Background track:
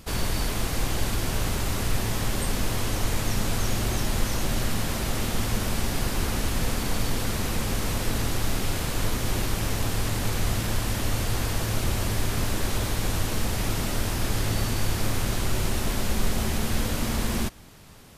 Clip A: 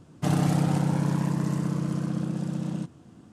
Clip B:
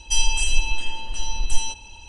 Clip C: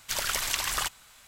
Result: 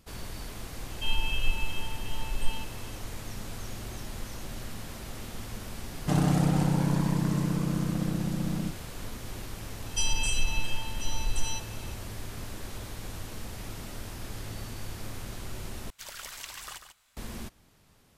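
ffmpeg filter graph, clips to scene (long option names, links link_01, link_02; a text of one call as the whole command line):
ffmpeg -i bed.wav -i cue0.wav -i cue1.wav -i cue2.wav -filter_complex "[2:a]asplit=2[link_01][link_02];[0:a]volume=-13dB[link_03];[link_01]aresample=8000,aresample=44100[link_04];[link_02]alimiter=level_in=9dB:limit=-1dB:release=50:level=0:latency=1[link_05];[3:a]aecho=1:1:143:0.335[link_06];[link_03]asplit=2[link_07][link_08];[link_07]atrim=end=15.904[link_09];[link_06]atrim=end=1.27,asetpts=PTS-STARTPTS,volume=-13dB[link_10];[link_08]atrim=start=17.166[link_11];[link_04]atrim=end=2.08,asetpts=PTS-STARTPTS,volume=-7.5dB,afade=type=in:duration=0.004:curve=hsin,afade=type=out:start_time=2.076:duration=0.004:curve=hsin,adelay=910[link_12];[1:a]atrim=end=3.32,asetpts=PTS-STARTPTS,volume=-1dB,afade=type=in:duration=0.004:curve=hsin,afade=type=out:start_time=3.316:duration=0.004:curve=hsin,adelay=257985S[link_13];[link_05]atrim=end=2.08,asetpts=PTS-STARTPTS,volume=-15dB,afade=type=in:duration=0.004:curve=hsin,afade=type=out:start_time=2.076:duration=0.004:curve=hsin,adelay=434826S[link_14];[link_09][link_10]acrossfade=duration=0.004:curve1=hsin:curve2=hsin[link_15];[link_15][link_11]acrossfade=duration=0.004:curve1=hsin:curve2=hsin[link_16];[link_16][link_12][link_13][link_14]amix=inputs=4:normalize=0" out.wav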